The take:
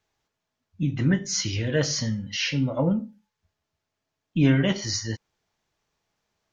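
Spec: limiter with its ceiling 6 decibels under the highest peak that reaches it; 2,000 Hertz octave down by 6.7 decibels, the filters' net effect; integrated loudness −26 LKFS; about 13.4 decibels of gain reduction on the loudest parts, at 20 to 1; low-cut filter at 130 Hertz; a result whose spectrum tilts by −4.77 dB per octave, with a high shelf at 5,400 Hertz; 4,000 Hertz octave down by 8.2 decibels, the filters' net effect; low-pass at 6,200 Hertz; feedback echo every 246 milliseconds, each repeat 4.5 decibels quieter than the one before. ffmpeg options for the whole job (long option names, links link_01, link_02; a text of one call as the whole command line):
ffmpeg -i in.wav -af "highpass=130,lowpass=6200,equalizer=frequency=2000:width_type=o:gain=-6,equalizer=frequency=4000:width_type=o:gain=-6,highshelf=frequency=5400:gain=-5,acompressor=threshold=-28dB:ratio=20,alimiter=level_in=2dB:limit=-24dB:level=0:latency=1,volume=-2dB,aecho=1:1:246|492|738|984|1230|1476|1722|1968|2214:0.596|0.357|0.214|0.129|0.0772|0.0463|0.0278|0.0167|0.01,volume=9dB" out.wav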